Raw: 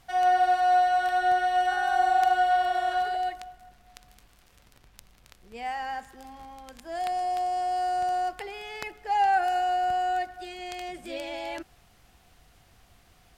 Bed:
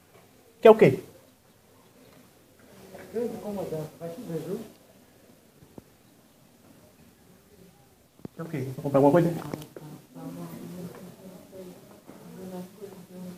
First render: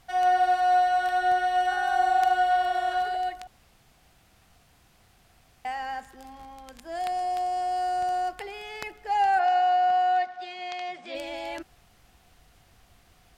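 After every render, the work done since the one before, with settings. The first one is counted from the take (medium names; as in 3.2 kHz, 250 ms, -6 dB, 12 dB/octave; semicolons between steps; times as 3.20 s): 3.47–5.65 s: room tone; 9.39–11.15 s: cabinet simulation 220–5900 Hz, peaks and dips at 330 Hz -8 dB, 780 Hz +5 dB, 1.1 kHz +5 dB, 2.1 kHz +4 dB, 3.6 kHz +3 dB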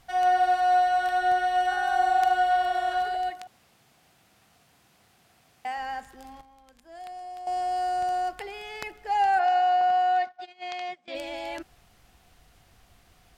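3.30–5.78 s: high-pass 130 Hz; 6.41–7.47 s: gain -11 dB; 9.81–11.08 s: gate -38 dBFS, range -20 dB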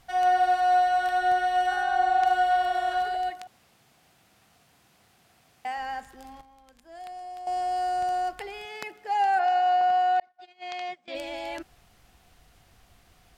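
1.83–2.26 s: distance through air 61 m; 8.65–9.66 s: Chebyshev high-pass 180 Hz; 10.20–10.77 s: fade in linear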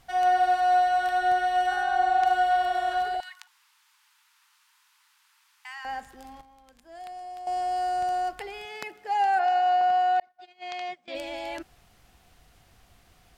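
3.20–5.85 s: Chebyshev high-pass 870 Hz, order 8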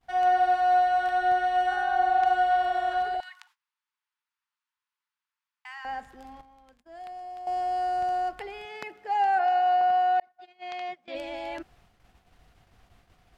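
gate -58 dBFS, range -24 dB; treble shelf 4.7 kHz -11 dB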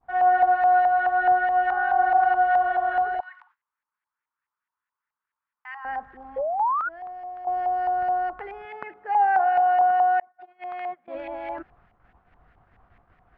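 6.36–6.89 s: painted sound rise 510–1500 Hz -28 dBFS; LFO low-pass saw up 4.7 Hz 910–2000 Hz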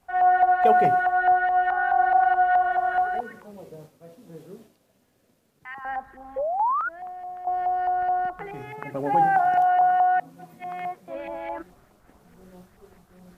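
add bed -10 dB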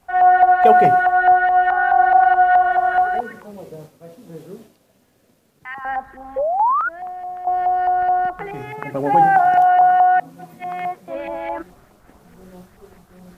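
trim +6.5 dB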